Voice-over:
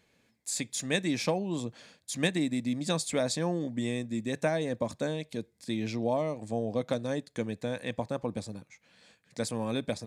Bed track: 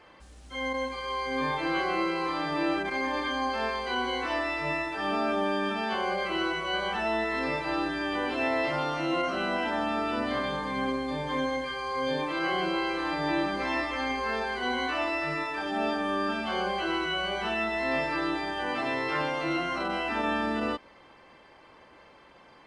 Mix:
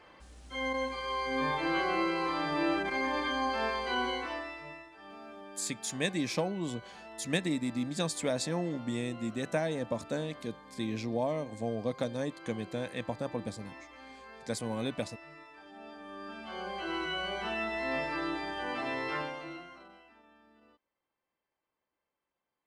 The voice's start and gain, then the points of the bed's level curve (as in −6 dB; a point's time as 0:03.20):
5.10 s, −2.5 dB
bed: 0:04.06 −2 dB
0:04.90 −20.5 dB
0:15.83 −20.5 dB
0:17.01 −5 dB
0:19.14 −5 dB
0:20.27 −34 dB